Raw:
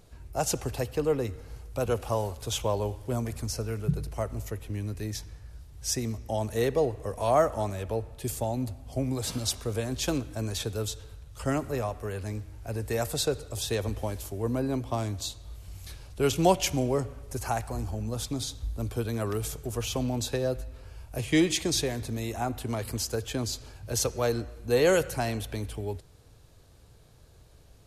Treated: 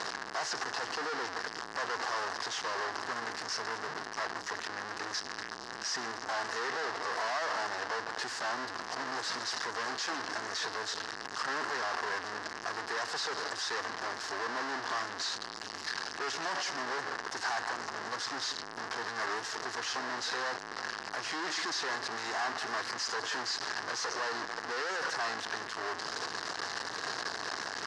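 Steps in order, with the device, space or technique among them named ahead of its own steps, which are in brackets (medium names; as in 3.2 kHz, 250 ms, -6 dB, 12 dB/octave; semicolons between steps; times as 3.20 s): home computer beeper (one-bit comparator; cabinet simulation 550–5500 Hz, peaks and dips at 560 Hz -8 dB, 1.1 kHz +4 dB, 1.7 kHz +8 dB, 2.4 kHz -8 dB, 3.4 kHz -7 dB, 5.1 kHz +4 dB)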